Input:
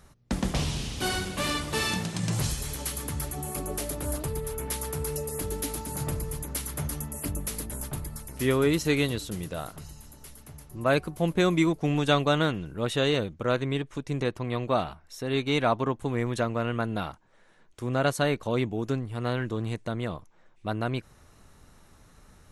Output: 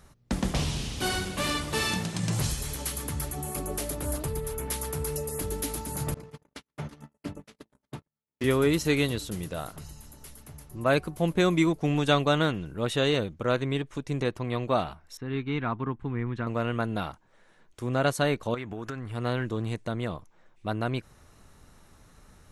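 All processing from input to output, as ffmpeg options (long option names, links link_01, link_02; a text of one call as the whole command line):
ffmpeg -i in.wav -filter_complex "[0:a]asettb=1/sr,asplit=3[link_01][link_02][link_03];[link_01]atrim=end=6.144[link_04];[link_02]atrim=start=6.14:end=8.44,asetpts=PTS-STARTPTS,afade=type=in:duration=0.004:curve=qsin,afade=type=out:start_time=2.296:duration=0.004:curve=qsin,highpass=150,lowpass=4000,agate=range=-49dB:threshold=-38dB:ratio=16:release=100:detection=peak[link_05];[link_03]atrim=start=8.436[link_06];[link_04][link_05]acrossfade=duration=0.004:curve1=hsin:curve2=qsin[link_07];[link_07][link_06]acrossfade=duration=0.004:curve1=qsin:curve2=hsin,asettb=1/sr,asplit=3[link_08][link_09][link_10];[link_08]atrim=end=15.174[link_11];[link_09]atrim=start=15.17:end=16.47,asetpts=PTS-STARTPTS,afade=type=in:duration=0.004:curve=qsin,afade=type=out:start_time=1.296:duration=0.004:curve=qsin,lowpass=1800,equalizer=frequency=590:width=1.5:gain=-14.5[link_12];[link_10]atrim=start=16.466[link_13];[link_11][link_12]acrossfade=duration=0.004:curve1=hsin:curve2=qsin[link_14];[link_14][link_13]acrossfade=duration=0.004:curve1=qsin:curve2=hsin,asettb=1/sr,asplit=3[link_15][link_16][link_17];[link_15]atrim=end=18.544[link_18];[link_16]atrim=start=18.54:end=19.12,asetpts=PTS-STARTPTS,afade=type=in:duration=0.004:curve=qsin,afade=type=out:start_time=0.576:duration=0.004:curve=qsin,equalizer=frequency=1500:width_type=o:width=1.3:gain=13,acompressor=threshold=-31dB:ratio=12:attack=3.2:release=140:knee=1:detection=peak[link_19];[link_17]atrim=start=19.116[link_20];[link_18][link_19]acrossfade=duration=0.004:curve1=hsin:curve2=qsin[link_21];[link_21][link_20]acrossfade=duration=0.004:curve1=qsin:curve2=hsin" out.wav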